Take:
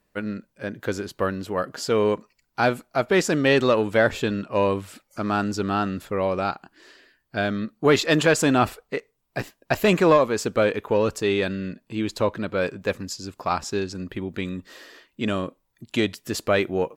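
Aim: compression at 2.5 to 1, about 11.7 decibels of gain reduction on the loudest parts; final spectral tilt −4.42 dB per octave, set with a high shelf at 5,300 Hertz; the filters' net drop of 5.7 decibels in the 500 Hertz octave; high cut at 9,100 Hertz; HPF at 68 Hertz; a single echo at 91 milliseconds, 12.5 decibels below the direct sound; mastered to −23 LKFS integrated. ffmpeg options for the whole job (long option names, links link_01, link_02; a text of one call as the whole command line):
ffmpeg -i in.wav -af "highpass=68,lowpass=9100,equalizer=frequency=500:width_type=o:gain=-7,highshelf=frequency=5300:gain=-8,acompressor=threshold=-35dB:ratio=2.5,aecho=1:1:91:0.237,volume=13dB" out.wav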